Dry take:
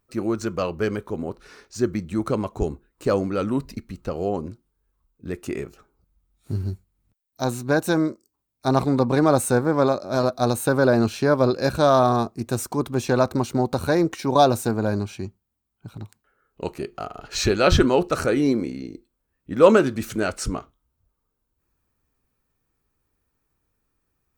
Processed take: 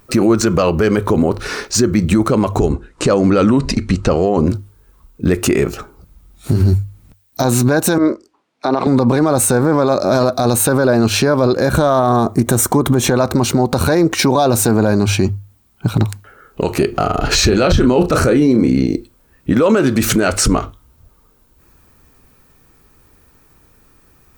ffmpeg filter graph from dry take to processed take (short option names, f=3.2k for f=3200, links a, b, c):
-filter_complex "[0:a]asettb=1/sr,asplit=3[a][b][c];[a]atrim=end=2.664[d];[b]atrim=start=2.66:end=4.48,asetpts=PTS-STARTPTS,afade=t=in:d=0.004:c=qsin,afade=t=out:st=1.816:d=0.004:c=qsin,lowpass=f=8.6k:w=0.5412,lowpass=f=8.6k:w=1.3066,acompressor=threshold=-30dB:ratio=2:attack=3.2:release=140:knee=1:detection=peak[e];[c]atrim=start=4.476[f];[d][e]acrossfade=d=0.004:c1=hsin:c2=qsin[g];[g][f]acrossfade=d=0.004:c1=qsin:c2=hsin,asettb=1/sr,asplit=3[h][i][j];[h]atrim=end=7.984[k];[i]atrim=start=7.98:end=8.87,asetpts=PTS-STARTPTS,afade=t=in:d=0.004:c=qsin,afade=t=out:st=0.886:d=0.004:c=qsin,acompressor=threshold=-25dB:ratio=2:attack=3.2:release=140:knee=1:detection=peak,highpass=310,lowpass=3.3k[l];[j]atrim=start=8.866[m];[k][l]acrossfade=d=0.004:c1=hsin:c2=qsin[n];[n][m]acrossfade=d=0.004:c1=qsin:c2=hsin,asettb=1/sr,asplit=3[o][p][q];[o]atrim=end=11.534[r];[p]atrim=start=11.53:end=13.17,asetpts=PTS-STARTPTS,afade=t=in:d=0.004:c=qsin,afade=t=out:st=1.636:d=0.004:c=qsin,equalizer=f=4.8k:w=2.8:g=-9.5,bandreject=f=2.6k:w=6.4,acompressor=threshold=-30dB:ratio=3:attack=3.2:release=140:knee=1:detection=peak[s];[q]atrim=start=13.166[t];[r][s]acrossfade=d=0.004:c1=hsin:c2=qsin[u];[u][t]acrossfade=d=0.004:c1=qsin:c2=hsin,asettb=1/sr,asplit=3[v][w][x];[v]atrim=end=16.924[y];[w]atrim=start=16.92:end=18.87,asetpts=PTS-STARTPTS,afade=t=in:d=0.004:c=qsin,afade=t=out:st=1.946:d=0.004:c=qsin,lowshelf=f=390:g=7.5,asplit=2[z][aa];[aa]adelay=32,volume=-9.5dB[ab];[z][ab]amix=inputs=2:normalize=0,atrim=end_sample=85995[ac];[x]atrim=start=18.866[ad];[y][ac]acrossfade=d=0.004:c1=hsin:c2=qsin[ae];[ae][ad]acrossfade=d=0.004:c1=qsin:c2=hsin,bandreject=f=50:t=h:w=6,bandreject=f=100:t=h:w=6,acompressor=threshold=-29dB:ratio=2.5,alimiter=level_in=27dB:limit=-1dB:release=50:level=0:latency=1,volume=-3.5dB"